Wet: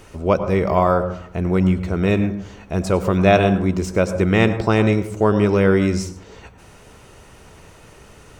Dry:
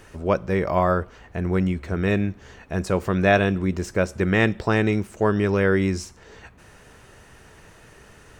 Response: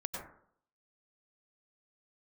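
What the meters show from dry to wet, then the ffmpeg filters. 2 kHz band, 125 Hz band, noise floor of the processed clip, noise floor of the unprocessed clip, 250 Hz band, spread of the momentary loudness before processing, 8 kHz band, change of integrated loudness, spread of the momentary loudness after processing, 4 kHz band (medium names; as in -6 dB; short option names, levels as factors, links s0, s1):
0.0 dB, +4.5 dB, -46 dBFS, -50 dBFS, +5.0 dB, 10 LU, +4.0 dB, +4.0 dB, 10 LU, +4.0 dB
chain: -filter_complex "[0:a]equalizer=f=1700:t=o:w=0.24:g=-10,asplit=2[s0][s1];[1:a]atrim=start_sample=2205[s2];[s1][s2]afir=irnorm=-1:irlink=0,volume=0.447[s3];[s0][s3]amix=inputs=2:normalize=0,volume=1.19"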